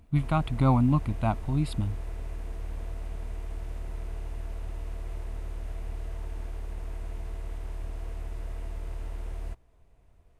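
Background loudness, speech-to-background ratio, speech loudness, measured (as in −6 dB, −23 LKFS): −39.5 LKFS, 12.5 dB, −27.0 LKFS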